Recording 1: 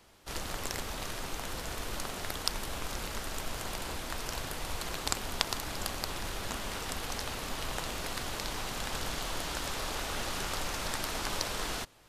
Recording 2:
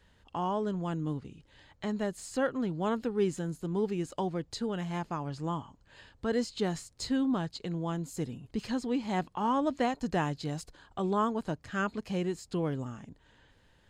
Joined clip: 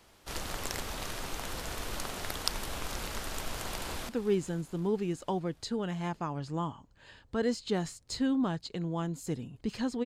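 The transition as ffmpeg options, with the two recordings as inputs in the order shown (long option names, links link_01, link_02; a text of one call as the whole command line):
ffmpeg -i cue0.wav -i cue1.wav -filter_complex "[0:a]apad=whole_dur=10.05,atrim=end=10.05,atrim=end=4.092[link_01];[1:a]atrim=start=2.988:end=8.95[link_02];[link_01][link_02]acrossfade=duration=0.004:curve1=hsin:curve2=hsin,asplit=2[link_03][link_04];[link_04]afade=type=in:start_time=3.63:duration=0.01,afade=type=out:start_time=4.09:duration=0.01,aecho=0:1:260|520|780|1040|1300|1560|1820|2080:0.158489|0.110943|0.0776598|0.0543618|0.0380533|0.0266373|0.0186461|0.0130523[link_05];[link_03][link_05]amix=inputs=2:normalize=0" out.wav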